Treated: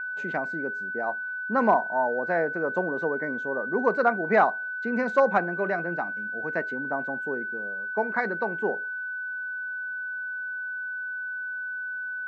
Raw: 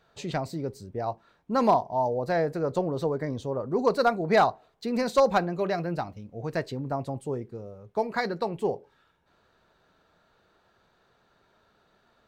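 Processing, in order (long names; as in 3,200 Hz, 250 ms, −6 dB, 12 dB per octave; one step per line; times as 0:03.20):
elliptic band-pass filter 200–7,000 Hz
steady tone 1,500 Hz −33 dBFS
high shelf with overshoot 2,800 Hz −12.5 dB, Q 1.5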